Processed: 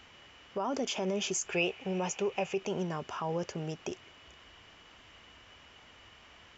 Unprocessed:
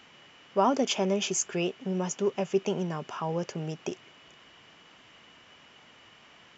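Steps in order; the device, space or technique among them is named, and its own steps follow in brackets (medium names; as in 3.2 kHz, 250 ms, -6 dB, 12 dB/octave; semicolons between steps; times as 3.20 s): car stereo with a boomy subwoofer (resonant low shelf 100 Hz +11.5 dB, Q 1.5; peak limiter -23 dBFS, peak gain reduction 11 dB); 1.48–2.60 s: graphic EQ with 31 bands 250 Hz -9 dB, 500 Hz +4 dB, 800 Hz +7 dB, 2.5 kHz +12 dB; trim -1 dB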